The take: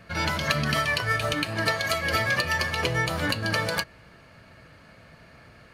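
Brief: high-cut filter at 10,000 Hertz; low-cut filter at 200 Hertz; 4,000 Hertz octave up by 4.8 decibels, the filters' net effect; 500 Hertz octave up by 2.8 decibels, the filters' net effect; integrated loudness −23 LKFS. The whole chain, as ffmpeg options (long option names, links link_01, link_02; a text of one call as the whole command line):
ffmpeg -i in.wav -af "highpass=200,lowpass=10000,equalizer=frequency=500:width_type=o:gain=3.5,equalizer=frequency=4000:width_type=o:gain=6,volume=0.5dB" out.wav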